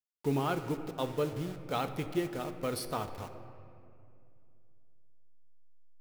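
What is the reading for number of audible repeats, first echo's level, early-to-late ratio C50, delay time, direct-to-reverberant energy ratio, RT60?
none, none, 10.0 dB, none, 7.0 dB, 2.5 s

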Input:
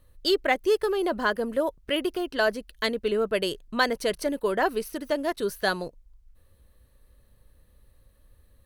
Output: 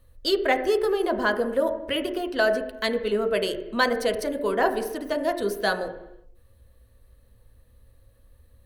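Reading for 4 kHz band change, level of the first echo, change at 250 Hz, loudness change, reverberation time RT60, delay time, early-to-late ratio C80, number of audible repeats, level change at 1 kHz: 0.0 dB, none, +1.0 dB, +1.5 dB, 0.85 s, none, 12.5 dB, none, +1.5 dB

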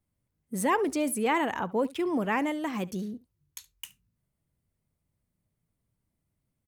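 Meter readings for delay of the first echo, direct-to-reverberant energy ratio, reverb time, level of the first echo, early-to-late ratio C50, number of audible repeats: 71 ms, none, none, -21.5 dB, none, 1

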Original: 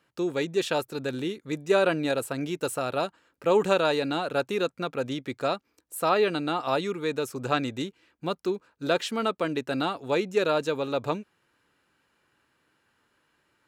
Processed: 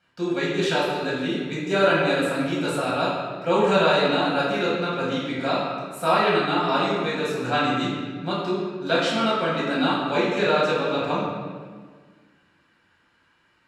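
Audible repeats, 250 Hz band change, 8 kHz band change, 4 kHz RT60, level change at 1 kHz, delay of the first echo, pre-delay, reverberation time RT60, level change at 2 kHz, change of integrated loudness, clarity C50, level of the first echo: none, +5.5 dB, 0.0 dB, 1.2 s, +6.5 dB, none, 5 ms, 1.6 s, +7.5 dB, +5.0 dB, -0.5 dB, none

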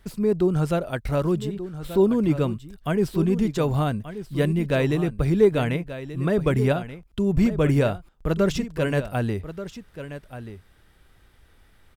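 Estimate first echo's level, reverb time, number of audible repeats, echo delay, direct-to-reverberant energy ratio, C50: -12.5 dB, none, 1, 1.182 s, none, none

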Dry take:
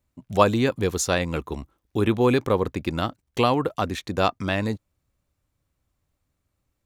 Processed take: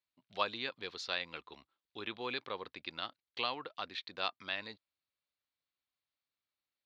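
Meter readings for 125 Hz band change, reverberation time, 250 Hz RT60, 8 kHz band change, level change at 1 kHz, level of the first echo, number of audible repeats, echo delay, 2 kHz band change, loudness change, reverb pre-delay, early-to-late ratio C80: -32.5 dB, none, none, under -25 dB, -15.5 dB, none, none, none, -10.0 dB, -15.5 dB, none, none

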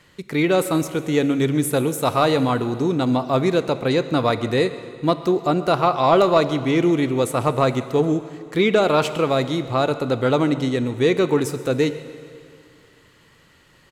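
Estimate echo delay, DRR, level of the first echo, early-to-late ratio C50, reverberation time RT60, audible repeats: 0.133 s, 11.5 dB, -21.0 dB, 12.0 dB, 2.4 s, 1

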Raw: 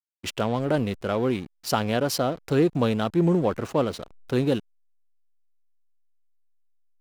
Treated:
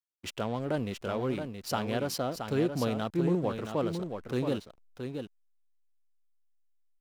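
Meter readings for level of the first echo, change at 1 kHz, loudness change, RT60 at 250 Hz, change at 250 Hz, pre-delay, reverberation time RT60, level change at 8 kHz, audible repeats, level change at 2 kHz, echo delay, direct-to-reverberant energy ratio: -7.0 dB, -6.5 dB, -7.5 dB, none, -6.5 dB, none, none, -6.5 dB, 1, -6.5 dB, 0.673 s, none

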